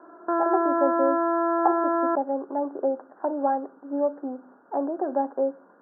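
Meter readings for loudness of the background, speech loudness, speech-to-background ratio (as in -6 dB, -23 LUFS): -24.5 LUFS, -28.5 LUFS, -4.0 dB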